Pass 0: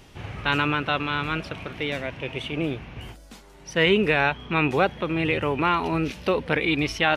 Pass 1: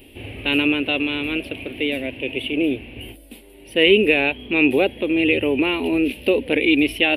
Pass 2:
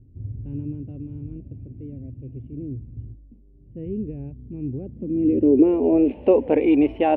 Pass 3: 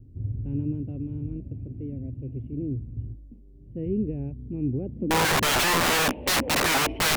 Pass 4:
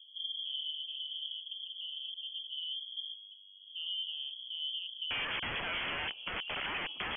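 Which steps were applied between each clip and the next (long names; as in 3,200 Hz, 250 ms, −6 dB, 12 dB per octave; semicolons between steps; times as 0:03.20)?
drawn EQ curve 110 Hz 0 dB, 160 Hz −11 dB, 260 Hz +10 dB, 550 Hz +4 dB, 1,300 Hz −15 dB, 2,700 Hz +10 dB, 6,400 Hz −18 dB, 10,000 Hz +12 dB
low-pass filter sweep 130 Hz → 870 Hz, 0:04.82–0:06.16
wrap-around overflow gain 19.5 dB; tape wow and flutter 22 cents; level +2 dB
downward compressor 2 to 1, threshold −29 dBFS, peak gain reduction 5 dB; voice inversion scrambler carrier 3,300 Hz; level −8.5 dB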